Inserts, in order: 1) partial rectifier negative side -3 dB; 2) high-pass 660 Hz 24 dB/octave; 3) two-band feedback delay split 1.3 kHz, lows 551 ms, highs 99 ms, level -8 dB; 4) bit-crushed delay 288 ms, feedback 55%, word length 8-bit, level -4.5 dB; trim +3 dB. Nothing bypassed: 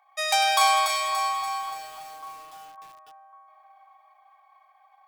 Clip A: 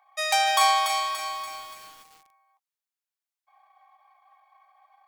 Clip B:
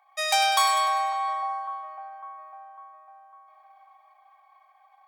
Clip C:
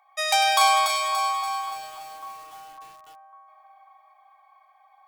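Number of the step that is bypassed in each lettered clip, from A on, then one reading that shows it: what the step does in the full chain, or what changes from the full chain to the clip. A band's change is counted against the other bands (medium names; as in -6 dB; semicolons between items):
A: 3, momentary loudness spread change -3 LU; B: 4, loudness change -1.0 LU; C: 1, distortion -15 dB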